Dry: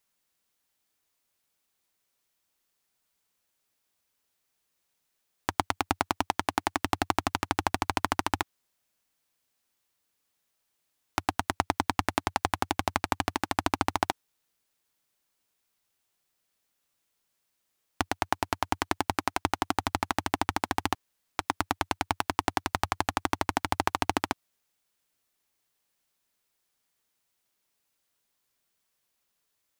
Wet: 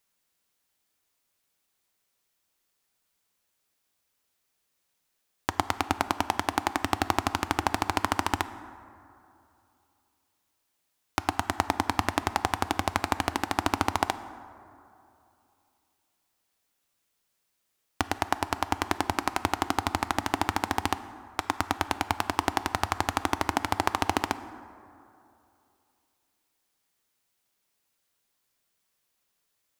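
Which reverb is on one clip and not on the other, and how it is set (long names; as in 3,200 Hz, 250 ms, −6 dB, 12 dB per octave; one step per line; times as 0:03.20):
dense smooth reverb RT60 2.7 s, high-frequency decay 0.4×, DRR 12.5 dB
level +1 dB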